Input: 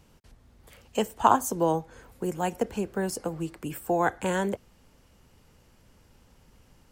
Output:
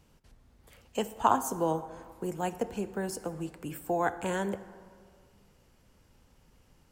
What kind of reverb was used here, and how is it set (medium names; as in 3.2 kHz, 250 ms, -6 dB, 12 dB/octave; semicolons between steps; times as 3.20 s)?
plate-style reverb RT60 2 s, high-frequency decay 0.45×, DRR 12.5 dB; trim -4.5 dB